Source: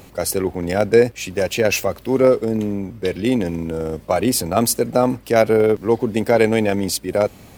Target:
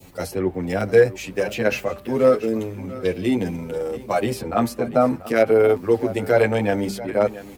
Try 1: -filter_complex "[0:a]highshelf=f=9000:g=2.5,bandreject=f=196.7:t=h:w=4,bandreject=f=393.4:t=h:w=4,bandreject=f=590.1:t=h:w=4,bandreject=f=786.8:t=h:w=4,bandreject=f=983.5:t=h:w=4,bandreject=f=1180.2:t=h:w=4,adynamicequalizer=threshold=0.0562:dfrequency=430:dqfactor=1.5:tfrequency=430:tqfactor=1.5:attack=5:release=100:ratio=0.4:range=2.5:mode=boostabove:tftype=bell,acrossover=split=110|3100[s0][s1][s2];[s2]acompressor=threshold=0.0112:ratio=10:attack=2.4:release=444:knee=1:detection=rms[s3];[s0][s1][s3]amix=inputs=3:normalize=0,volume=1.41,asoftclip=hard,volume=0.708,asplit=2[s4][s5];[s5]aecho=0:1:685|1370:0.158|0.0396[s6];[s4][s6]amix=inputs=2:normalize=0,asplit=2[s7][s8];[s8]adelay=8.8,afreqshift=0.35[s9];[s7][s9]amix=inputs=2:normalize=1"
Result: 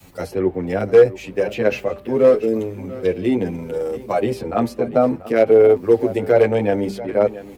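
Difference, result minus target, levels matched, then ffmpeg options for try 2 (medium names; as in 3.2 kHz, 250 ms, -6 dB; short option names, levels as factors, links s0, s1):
compression: peak gain reduction +8 dB; 1 kHz band -3.0 dB
-filter_complex "[0:a]highshelf=f=9000:g=2.5,bandreject=f=196.7:t=h:w=4,bandreject=f=393.4:t=h:w=4,bandreject=f=590.1:t=h:w=4,bandreject=f=786.8:t=h:w=4,bandreject=f=983.5:t=h:w=4,bandreject=f=1180.2:t=h:w=4,adynamicequalizer=threshold=0.0562:dfrequency=1400:dqfactor=1.5:tfrequency=1400:tqfactor=1.5:attack=5:release=100:ratio=0.4:range=2.5:mode=boostabove:tftype=bell,acrossover=split=110|3100[s0][s1][s2];[s2]acompressor=threshold=0.0316:ratio=10:attack=2.4:release=444:knee=1:detection=rms[s3];[s0][s1][s3]amix=inputs=3:normalize=0,volume=1.41,asoftclip=hard,volume=0.708,asplit=2[s4][s5];[s5]aecho=0:1:685|1370:0.158|0.0396[s6];[s4][s6]amix=inputs=2:normalize=0,asplit=2[s7][s8];[s8]adelay=8.8,afreqshift=0.35[s9];[s7][s9]amix=inputs=2:normalize=1"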